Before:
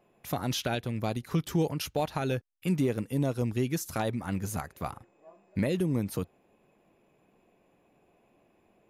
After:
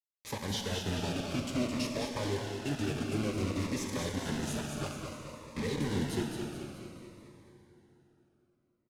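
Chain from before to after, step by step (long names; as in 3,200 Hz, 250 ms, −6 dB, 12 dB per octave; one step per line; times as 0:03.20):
high-pass filter 110 Hz 24 dB per octave
high-shelf EQ 2,900 Hz +6.5 dB
mains-hum notches 50/100/150/200/250 Hz
downward compressor 3 to 1, threshold −32 dBFS, peak gain reduction 8 dB
phase-vocoder pitch shift with formants kept −4.5 semitones
bit reduction 6 bits
high-frequency loss of the air 63 metres
repeating echo 215 ms, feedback 50%, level −6 dB
dense smooth reverb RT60 3.5 s, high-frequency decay 0.8×, DRR 2.5 dB
phaser whose notches keep moving one way falling 0.56 Hz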